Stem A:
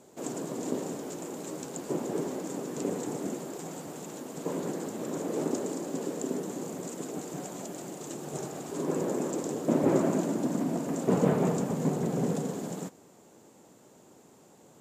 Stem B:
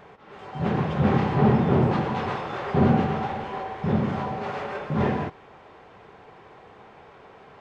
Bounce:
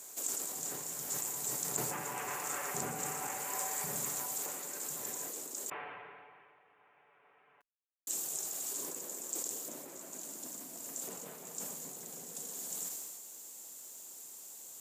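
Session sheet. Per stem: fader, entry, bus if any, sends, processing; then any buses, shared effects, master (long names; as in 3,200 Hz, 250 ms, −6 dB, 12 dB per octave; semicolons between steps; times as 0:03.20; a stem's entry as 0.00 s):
−5.5 dB, 0.00 s, muted 0:05.70–0:08.07, no send, high-shelf EQ 5,100 Hz +11 dB; downward compressor 10 to 1, threshold −39 dBFS, peak gain reduction 20 dB
0:01.49 −17.5 dB → 0:01.99 −7 dB → 0:03.95 −7 dB → 0:04.51 −18 dB, 0.00 s, no send, Butterworth low-pass 2,700 Hz 36 dB per octave; comb filter 6.9 ms, depth 49%; downward compressor 2 to 1, threshold −33 dBFS, peak gain reduction 11 dB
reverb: not used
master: spectral tilt +4.5 dB per octave; level that may fall only so fast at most 28 dB per second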